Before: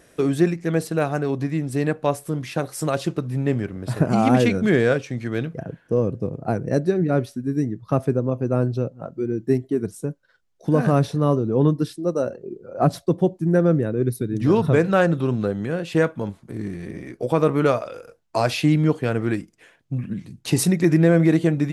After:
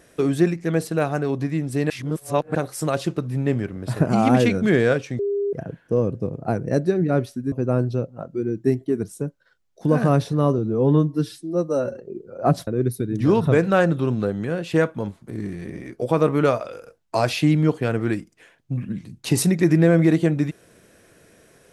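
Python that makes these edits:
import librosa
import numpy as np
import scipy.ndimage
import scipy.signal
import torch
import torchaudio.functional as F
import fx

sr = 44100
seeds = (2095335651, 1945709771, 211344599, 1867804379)

y = fx.edit(x, sr, fx.reverse_span(start_s=1.9, length_s=0.65),
    fx.bleep(start_s=5.19, length_s=0.34, hz=403.0, db=-20.0),
    fx.cut(start_s=7.52, length_s=0.83),
    fx.stretch_span(start_s=11.41, length_s=0.94, factor=1.5),
    fx.cut(start_s=13.03, length_s=0.85), tone=tone)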